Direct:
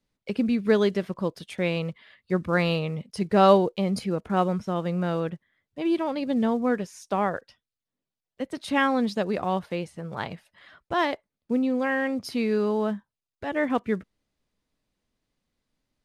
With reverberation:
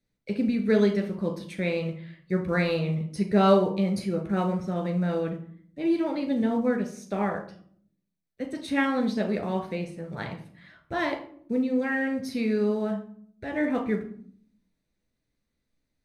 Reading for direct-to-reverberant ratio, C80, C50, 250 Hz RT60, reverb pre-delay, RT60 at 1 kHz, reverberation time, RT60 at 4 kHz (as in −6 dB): 3.0 dB, 14.0 dB, 9.0 dB, 0.95 s, 10 ms, 0.50 s, 0.60 s, 0.35 s